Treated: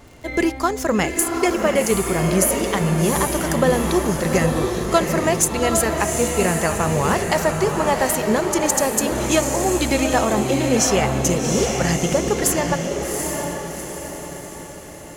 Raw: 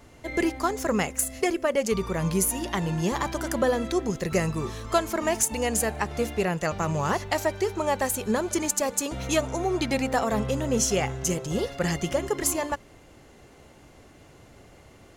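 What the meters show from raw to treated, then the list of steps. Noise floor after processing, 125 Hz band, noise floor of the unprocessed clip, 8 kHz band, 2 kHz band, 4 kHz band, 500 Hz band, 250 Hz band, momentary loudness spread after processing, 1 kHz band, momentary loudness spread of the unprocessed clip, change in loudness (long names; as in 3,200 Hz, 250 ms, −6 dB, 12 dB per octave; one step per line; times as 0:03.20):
−36 dBFS, +7.5 dB, −52 dBFS, +7.5 dB, +7.5 dB, +7.5 dB, +7.5 dB, +7.5 dB, 8 LU, +7.5 dB, 4 LU, +7.0 dB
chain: tape wow and flutter 17 cents
surface crackle 21 per second −40 dBFS
on a send: feedback delay with all-pass diffusion 766 ms, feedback 49%, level −4 dB
on the sum: level +5.5 dB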